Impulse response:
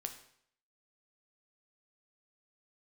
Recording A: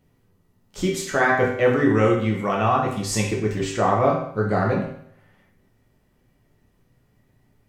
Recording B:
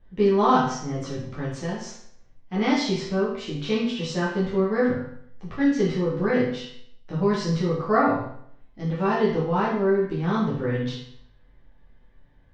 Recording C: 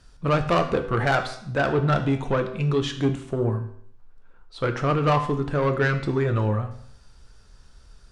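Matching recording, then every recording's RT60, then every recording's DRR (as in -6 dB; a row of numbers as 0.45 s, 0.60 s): C; 0.65 s, 0.65 s, 0.65 s; -2.5 dB, -9.0 dB, 6.0 dB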